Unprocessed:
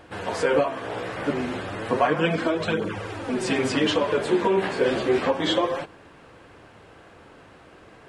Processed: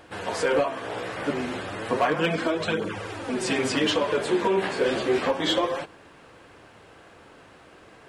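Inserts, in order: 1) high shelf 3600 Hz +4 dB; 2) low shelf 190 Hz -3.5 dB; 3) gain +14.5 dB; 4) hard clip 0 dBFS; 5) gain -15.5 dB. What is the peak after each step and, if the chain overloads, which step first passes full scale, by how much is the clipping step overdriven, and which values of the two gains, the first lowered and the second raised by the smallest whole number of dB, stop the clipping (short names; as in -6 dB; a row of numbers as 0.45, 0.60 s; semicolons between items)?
-8.5, -8.5, +6.0, 0.0, -15.5 dBFS; step 3, 6.0 dB; step 3 +8.5 dB, step 5 -9.5 dB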